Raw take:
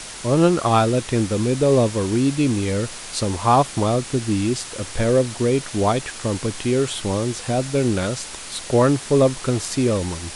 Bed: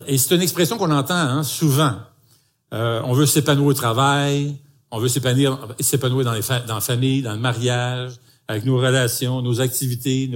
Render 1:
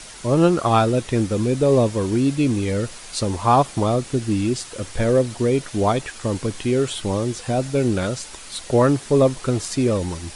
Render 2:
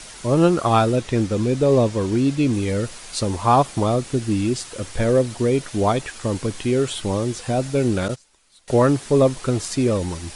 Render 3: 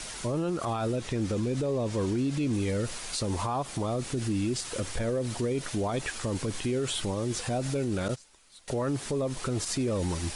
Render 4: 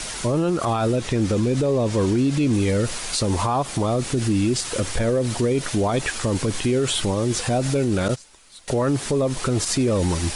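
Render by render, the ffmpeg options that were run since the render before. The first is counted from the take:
ffmpeg -i in.wav -af "afftdn=noise_reduction=6:noise_floor=-35" out.wav
ffmpeg -i in.wav -filter_complex "[0:a]asettb=1/sr,asplit=3[link_01][link_02][link_03];[link_01]atrim=end=0.964[link_04];[link_02]atrim=start=0.96:end=2.53,asetpts=PTS-STARTPTS,afade=type=in:duration=0.004:curve=qsin,afade=type=out:start_time=1.566:duration=0.004:curve=qsin,lowpass=8300[link_05];[link_03]atrim=start=2.526[link_06];[link_04][link_05]acrossfade=duration=0.004:curve1=hsin:curve2=qsin[link_07];[link_07][link_06]acrossfade=duration=0.004:curve1=qsin:curve2=hsin,asettb=1/sr,asplit=3[link_08][link_09][link_10];[link_08]atrim=end=8.084[link_11];[link_09]atrim=start=8.08:end=8.68,asetpts=PTS-STARTPTS,afade=type=in:duration=0.004:curve=qsin,afade=type=out:start_time=0.596:duration=0.004:curve=qsin,agate=range=-22dB:threshold=-26dB:ratio=16:release=100:detection=peak[link_12];[link_10]atrim=start=8.676[link_13];[link_11][link_12]acrossfade=duration=0.004:curve1=hsin:curve2=qsin[link_14];[link_14][link_13]acrossfade=duration=0.004:curve1=qsin:curve2=hsin" out.wav
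ffmpeg -i in.wav -af "acompressor=threshold=-19dB:ratio=6,alimiter=limit=-22dB:level=0:latency=1:release=55" out.wav
ffmpeg -i in.wav -af "volume=8.5dB" out.wav

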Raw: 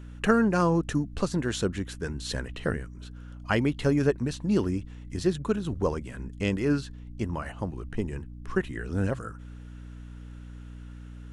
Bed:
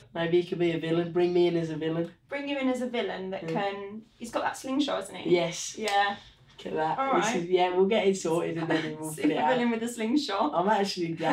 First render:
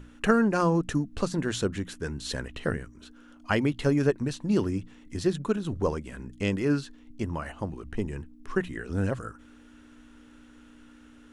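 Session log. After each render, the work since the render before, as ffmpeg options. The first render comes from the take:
ffmpeg -i in.wav -af "bandreject=frequency=60:width_type=h:width=6,bandreject=frequency=120:width_type=h:width=6,bandreject=frequency=180:width_type=h:width=6" out.wav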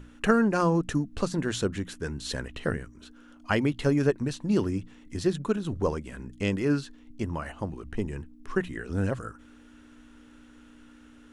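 ffmpeg -i in.wav -af anull out.wav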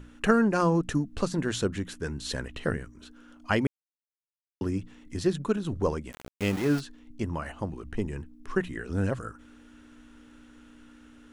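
ffmpeg -i in.wav -filter_complex "[0:a]asplit=3[link_01][link_02][link_03];[link_01]afade=type=out:start_time=6.11:duration=0.02[link_04];[link_02]aeval=exprs='val(0)*gte(abs(val(0)),0.0237)':channel_layout=same,afade=type=in:start_time=6.11:duration=0.02,afade=type=out:start_time=6.79:duration=0.02[link_05];[link_03]afade=type=in:start_time=6.79:duration=0.02[link_06];[link_04][link_05][link_06]amix=inputs=3:normalize=0,asplit=3[link_07][link_08][link_09];[link_07]atrim=end=3.67,asetpts=PTS-STARTPTS,afade=type=out:start_time=3.666:duration=0.004:curve=hsin[link_10];[link_08]atrim=start=3.67:end=4.61,asetpts=PTS-STARTPTS,volume=0[link_11];[link_09]atrim=start=4.61,asetpts=PTS-STARTPTS,afade=type=in:duration=0.004:curve=hsin[link_12];[link_10][link_11][link_12]concat=n=3:v=0:a=1" out.wav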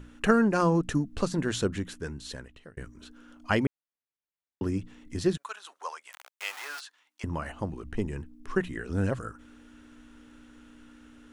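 ffmpeg -i in.wav -filter_complex "[0:a]asplit=3[link_01][link_02][link_03];[link_01]afade=type=out:start_time=3.65:duration=0.02[link_04];[link_02]lowpass=3100,afade=type=in:start_time=3.65:duration=0.02,afade=type=out:start_time=4.62:duration=0.02[link_05];[link_03]afade=type=in:start_time=4.62:duration=0.02[link_06];[link_04][link_05][link_06]amix=inputs=3:normalize=0,asettb=1/sr,asplit=3[link_07][link_08][link_09];[link_07]atrim=end=5.374[link_10];[link_08]atrim=start=5.37:end=7.24,asetpts=PTS-STARTPTS,afade=type=in:duration=0.004:curve=qsin,afade=type=out:start_time=1.866:duration=0.004:curve=qsin,highpass=frequency=850:width=0.5412,highpass=frequency=850:width=1.3066[link_11];[link_09]atrim=start=7.236[link_12];[link_10][link_11]acrossfade=duration=0.004:curve1=hsin:curve2=qsin[link_13];[link_13][link_12]acrossfade=duration=0.004:curve1=qsin:curve2=hsin,asplit=2[link_14][link_15];[link_14]atrim=end=2.77,asetpts=PTS-STARTPTS,afade=type=out:start_time=1.77:duration=1[link_16];[link_15]atrim=start=2.77,asetpts=PTS-STARTPTS,afade=type=in:duration=0.004:curve=hsin[link_17];[link_16][link_17]concat=n=2:v=0:a=1" out.wav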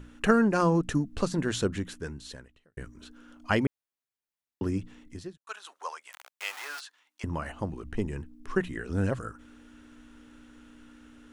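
ffmpeg -i in.wav -filter_complex "[0:a]asplit=3[link_01][link_02][link_03];[link_01]atrim=end=2.77,asetpts=PTS-STARTPTS,afade=type=out:start_time=1.78:duration=0.99:curve=qsin[link_04];[link_02]atrim=start=2.77:end=5.47,asetpts=PTS-STARTPTS,afade=type=in:duration=0.004:curve=hsin,afade=type=out:start_time=2.22:duration=0.48:curve=qua[link_05];[link_03]atrim=start=5.47,asetpts=PTS-STARTPTS,afade=type=in:duration=0.004:curve=hsin[link_06];[link_04][link_05][link_06]concat=n=3:v=0:a=1" out.wav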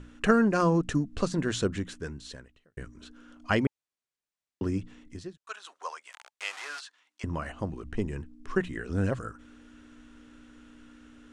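ffmpeg -i in.wav -af "lowpass=frequency=9200:width=0.5412,lowpass=frequency=9200:width=1.3066,bandreject=frequency=870:width=16" out.wav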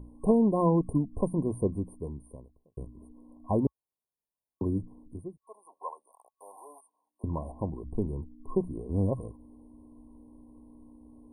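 ffmpeg -i in.wav -af "equalizer=frequency=65:width=1.5:gain=2.5,afftfilt=real='re*(1-between(b*sr/4096,1100,8700))':imag='im*(1-between(b*sr/4096,1100,8700))':win_size=4096:overlap=0.75" out.wav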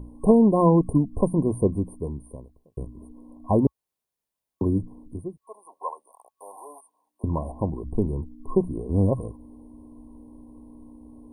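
ffmpeg -i in.wav -af "volume=6.5dB" out.wav

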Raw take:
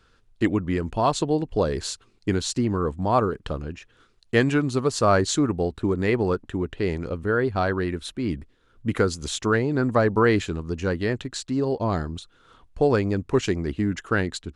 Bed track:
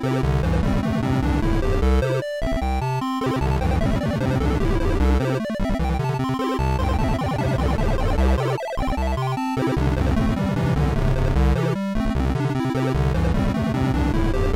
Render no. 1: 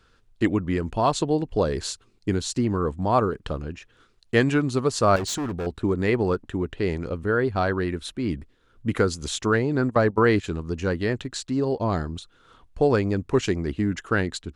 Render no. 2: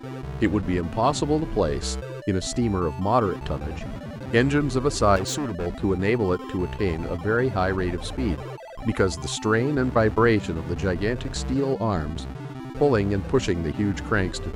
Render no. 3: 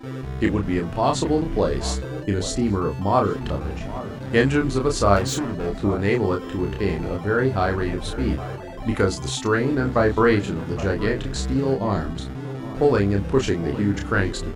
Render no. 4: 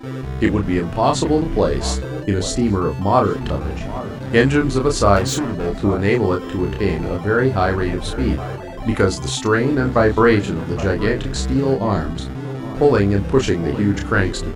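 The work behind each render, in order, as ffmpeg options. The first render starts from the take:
ffmpeg -i in.wav -filter_complex "[0:a]asettb=1/sr,asplit=3[link_01][link_02][link_03];[link_01]atrim=end=1.924[link_04];[link_02]atrim=start=1.92:end=2.56,asetpts=PTS-STARTPTS,afade=type=in:duration=0.004:curve=qsin,afade=type=out:start_time=0.636:duration=0.004:curve=qsin,equalizer=frequency=1800:width=0.32:gain=-3.5[link_05];[link_03]atrim=start=2.556[link_06];[link_04][link_05]acrossfade=duration=0.004:curve1=hsin:curve2=qsin[link_07];[link_07][link_06]acrossfade=duration=0.004:curve1=qsin:curve2=hsin,asettb=1/sr,asplit=3[link_08][link_09][link_10];[link_08]atrim=end=5.164[link_11];[link_09]atrim=start=5.16:end=5.67,asetpts=PTS-STARTPTS,afade=type=in:duration=0.004:curve=qsin,afade=type=out:start_time=0.506:duration=0.004:curve=qsin,volume=25.5dB,asoftclip=hard,volume=-25.5dB[link_12];[link_10]atrim=start=5.666[link_13];[link_11][link_12]acrossfade=duration=0.004:curve1=hsin:curve2=qsin[link_14];[link_14][link_13]acrossfade=duration=0.004:curve1=qsin:curve2=hsin,asplit=3[link_15][link_16][link_17];[link_15]afade=type=out:start_time=9.85:duration=0.02[link_18];[link_16]agate=range=-14dB:threshold=-24dB:ratio=16:release=100:detection=peak,afade=type=in:start_time=9.85:duration=0.02,afade=type=out:start_time=10.43:duration=0.02[link_19];[link_17]afade=type=in:start_time=10.43:duration=0.02[link_20];[link_18][link_19][link_20]amix=inputs=3:normalize=0" out.wav
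ffmpeg -i in.wav -i bed.wav -filter_complex "[1:a]volume=-13dB[link_01];[0:a][link_01]amix=inputs=2:normalize=0" out.wav
ffmpeg -i in.wav -filter_complex "[0:a]asplit=2[link_01][link_02];[link_02]adelay=30,volume=-4dB[link_03];[link_01][link_03]amix=inputs=2:normalize=0,asplit=2[link_04][link_05];[link_05]adelay=816.3,volume=-14dB,highshelf=frequency=4000:gain=-18.4[link_06];[link_04][link_06]amix=inputs=2:normalize=0" out.wav
ffmpeg -i in.wav -af "volume=4dB,alimiter=limit=-1dB:level=0:latency=1" out.wav

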